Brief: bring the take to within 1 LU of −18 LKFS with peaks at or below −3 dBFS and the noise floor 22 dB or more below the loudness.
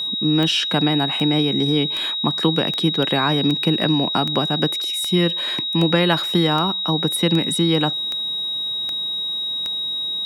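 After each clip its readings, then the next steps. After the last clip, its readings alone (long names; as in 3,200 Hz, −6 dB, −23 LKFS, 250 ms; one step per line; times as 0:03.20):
number of clicks 13; interfering tone 3,800 Hz; level of the tone −22 dBFS; integrated loudness −19.0 LKFS; sample peak −4.5 dBFS; target loudness −18.0 LKFS
→ click removal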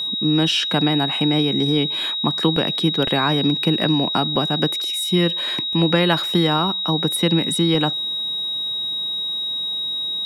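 number of clicks 0; interfering tone 3,800 Hz; level of the tone −22 dBFS
→ notch filter 3,800 Hz, Q 30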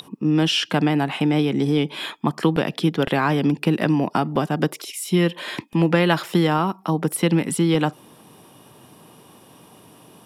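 interfering tone none found; integrated loudness −21.0 LKFS; sample peak −5.0 dBFS; target loudness −18.0 LKFS
→ level +3 dB
brickwall limiter −3 dBFS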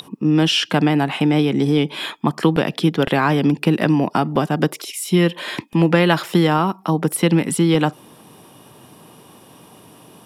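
integrated loudness −18.0 LKFS; sample peak −3.0 dBFS; background noise floor −47 dBFS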